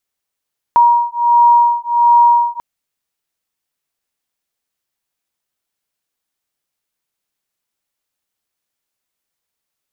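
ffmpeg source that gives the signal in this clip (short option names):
-f lavfi -i "aevalsrc='0.282*(sin(2*PI*949*t)+sin(2*PI*950.4*t))':d=1.84:s=44100"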